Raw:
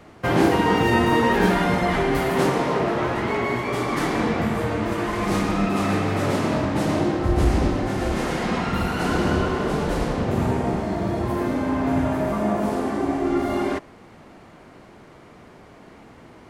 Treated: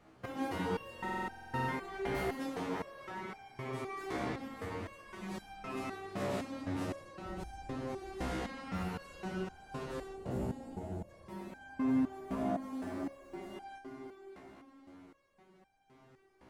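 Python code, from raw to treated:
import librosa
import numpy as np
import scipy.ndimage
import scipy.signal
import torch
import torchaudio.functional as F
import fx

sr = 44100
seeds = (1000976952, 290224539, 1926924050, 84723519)

y = fx.spec_box(x, sr, start_s=10.13, length_s=0.96, low_hz=910.0, high_hz=6500.0, gain_db=-14)
y = fx.echo_heads(y, sr, ms=203, heads='all three', feedback_pct=51, wet_db=-16.5)
y = fx.quant_companded(y, sr, bits=8, at=(12.68, 13.35))
y = fx.buffer_glitch(y, sr, at_s=(0.94,), block=2048, repeats=15)
y = fx.resonator_held(y, sr, hz=3.9, low_hz=64.0, high_hz=790.0)
y = y * 10.0 ** (-6.5 / 20.0)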